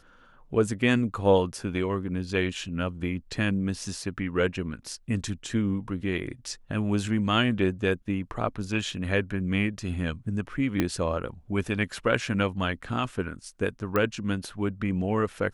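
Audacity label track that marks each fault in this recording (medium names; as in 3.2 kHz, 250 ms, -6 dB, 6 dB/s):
10.800000	10.800000	pop -11 dBFS
13.960000	13.960000	pop -13 dBFS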